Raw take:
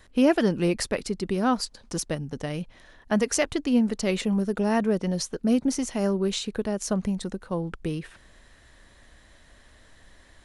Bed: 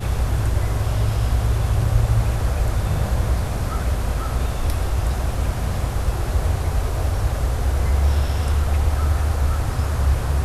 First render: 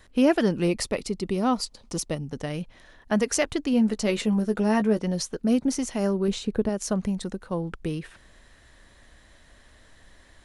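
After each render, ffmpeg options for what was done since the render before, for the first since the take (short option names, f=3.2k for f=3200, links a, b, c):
-filter_complex "[0:a]asettb=1/sr,asplit=3[a][b][c];[a]atrim=end=0.674[d];[b]atrim=start=0.67:end=2.3,asetpts=PTS-STARTPTS,afade=t=in:d=0.004:c=qsin,afade=t=out:st=1.626:d=0.004:c=qsin,equalizer=f=1.6k:w=7.8:g=-13.5[e];[c]atrim=start=2.296[f];[d][e]acrossfade=d=0.004:c1=hsin:c2=qsin[g];[g][f]acrossfade=d=0.004:c1=qsin:c2=hsin,asettb=1/sr,asplit=3[h][i][j];[h]atrim=end=3.724[k];[i]atrim=start=3.72:end=5.01,asetpts=PTS-STARTPTS,afade=t=in:d=0.004:c=qsin,afade=t=out:st=1.286:d=0.004:c=qsin,asplit=2[l][m];[m]adelay=14,volume=-8.5dB[n];[l][n]amix=inputs=2:normalize=0,atrim=end_sample=56889[o];[j]atrim=start=5.006[p];[k][o]acrossfade=d=0.004:c1=hsin:c2=qsin[q];[q][p]acrossfade=d=0.004:c1=qsin:c2=hsin,asettb=1/sr,asplit=3[r][s][t];[r]atrim=end=6.284[u];[s]atrim=start=6.28:end=6.69,asetpts=PTS-STARTPTS,afade=t=in:d=0.004:c=qsin,afade=t=out:st=0.406:d=0.004:c=qsin,tiltshelf=f=970:g=5.5[v];[t]atrim=start=6.686[w];[u][v]acrossfade=d=0.004:c1=hsin:c2=qsin[x];[x][w]acrossfade=d=0.004:c1=qsin:c2=hsin"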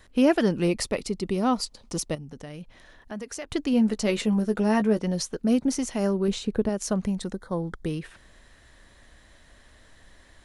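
-filter_complex "[0:a]asettb=1/sr,asplit=3[a][b][c];[a]atrim=end=2.154[d];[b]atrim=start=2.15:end=3.51,asetpts=PTS-STARTPTS,afade=t=in:d=0.004:c=qsin,afade=t=out:st=1.356:d=0.004:c=qsin,acompressor=threshold=-42dB:ratio=2:attack=3.2:release=140:knee=1:detection=peak[e];[c]atrim=start=3.506[f];[d][e]acrossfade=d=0.004:c1=hsin:c2=qsin[g];[g][f]acrossfade=d=0.004:c1=qsin:c2=hsin,asettb=1/sr,asplit=3[h][i][j];[h]atrim=end=7.334[k];[i]atrim=start=7.33:end=7.86,asetpts=PTS-STARTPTS,afade=t=in:d=0.004:c=qsin,afade=t=out:st=0.526:d=0.004:c=qsin,asuperstop=centerf=2600:order=12:qfactor=2.6[l];[j]atrim=start=7.856[m];[k][l]acrossfade=d=0.004:c1=hsin:c2=qsin[n];[n][m]acrossfade=d=0.004:c1=qsin:c2=hsin"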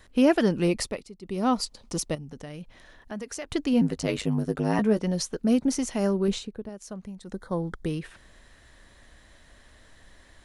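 -filter_complex "[0:a]asettb=1/sr,asplit=3[a][b][c];[a]atrim=end=3.814[d];[b]atrim=start=3.81:end=4.79,asetpts=PTS-STARTPTS,afade=t=in:d=0.004:c=qsin,afade=t=out:st=0.976:d=0.004:c=qsin,aeval=exprs='val(0)*sin(2*PI*51*n/s)':c=same[e];[c]atrim=start=4.786[f];[d][e]acrossfade=d=0.004:c1=hsin:c2=qsin[g];[g][f]acrossfade=d=0.004:c1=qsin:c2=hsin,asplit=5[h][i][j][k][l];[h]atrim=end=1.06,asetpts=PTS-STARTPTS,afade=t=out:st=0.79:d=0.27:silence=0.16788[m];[i]atrim=start=1.06:end=1.21,asetpts=PTS-STARTPTS,volume=-15.5dB[n];[j]atrim=start=1.21:end=6.5,asetpts=PTS-STARTPTS,afade=t=in:d=0.27:silence=0.16788,afade=t=out:st=5.16:d=0.13:silence=0.237137[o];[k]atrim=start=6.5:end=7.25,asetpts=PTS-STARTPTS,volume=-12.5dB[p];[l]atrim=start=7.25,asetpts=PTS-STARTPTS,afade=t=in:d=0.13:silence=0.237137[q];[m][n][o][p][q]concat=n=5:v=0:a=1"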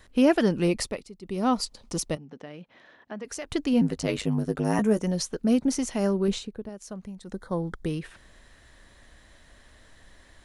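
-filter_complex "[0:a]asettb=1/sr,asplit=3[a][b][c];[a]atrim=end=2.174[d];[b]atrim=start=2.17:end=3.25,asetpts=PTS-STARTPTS,afade=t=in:d=0.004:c=qsin,afade=t=out:st=1.076:d=0.004:c=qsin,highpass=210,lowpass=3.4k[e];[c]atrim=start=3.246[f];[d][e]acrossfade=d=0.004:c1=hsin:c2=qsin[g];[g][f]acrossfade=d=0.004:c1=qsin:c2=hsin,asettb=1/sr,asplit=3[h][i][j];[h]atrim=end=4.644[k];[i]atrim=start=4.64:end=5.11,asetpts=PTS-STARTPTS,afade=t=in:d=0.004:c=qsin,afade=t=out:st=0.466:d=0.004:c=qsin,highshelf=f=5.6k:t=q:w=3:g=6.5[l];[j]atrim=start=5.106[m];[k][l]acrossfade=d=0.004:c1=hsin:c2=qsin[n];[n][m]acrossfade=d=0.004:c1=qsin:c2=hsin"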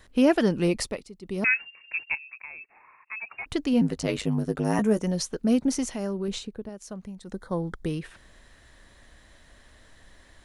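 -filter_complex "[0:a]asettb=1/sr,asplit=3[a][b][c];[a]atrim=end=1.444[d];[b]atrim=start=1.44:end=3.46,asetpts=PTS-STARTPTS,afade=t=in:d=0.004:c=qsin,afade=t=out:st=2.016:d=0.004:c=qsin,lowpass=f=2.4k:t=q:w=0.5098,lowpass=f=2.4k:t=q:w=0.6013,lowpass=f=2.4k:t=q:w=0.9,lowpass=f=2.4k:t=q:w=2.563,afreqshift=-2800[e];[c]atrim=start=3.456[f];[d][e]acrossfade=d=0.004:c1=hsin:c2=qsin[g];[g][f]acrossfade=d=0.004:c1=qsin:c2=hsin,asettb=1/sr,asplit=3[h][i][j];[h]atrim=end=5.914[k];[i]atrim=start=5.91:end=6.34,asetpts=PTS-STARTPTS,afade=t=in:d=0.004:c=qsin,afade=t=out:st=0.426:d=0.004:c=qsin,acompressor=threshold=-35dB:ratio=1.5:attack=3.2:release=140:knee=1:detection=peak[l];[j]atrim=start=6.336[m];[k][l]acrossfade=d=0.004:c1=hsin:c2=qsin[n];[n][m]acrossfade=d=0.004:c1=qsin:c2=hsin"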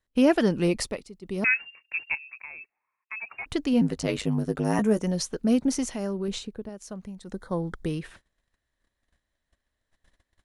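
-af "agate=range=-27dB:threshold=-48dB:ratio=16:detection=peak"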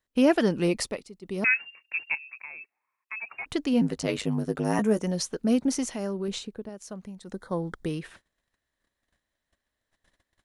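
-af "lowshelf=f=90:g=-9.5"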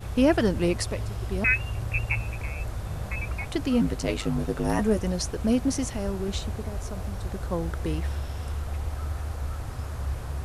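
-filter_complex "[1:a]volume=-12dB[a];[0:a][a]amix=inputs=2:normalize=0"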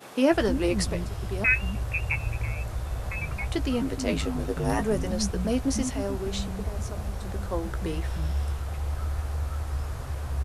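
-filter_complex "[0:a]asplit=2[a][b];[b]adelay=15,volume=-10.5dB[c];[a][c]amix=inputs=2:normalize=0,acrossover=split=220[d][e];[d]adelay=310[f];[f][e]amix=inputs=2:normalize=0"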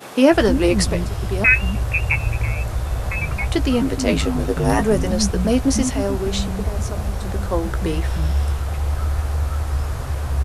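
-af "volume=8.5dB,alimiter=limit=-2dB:level=0:latency=1"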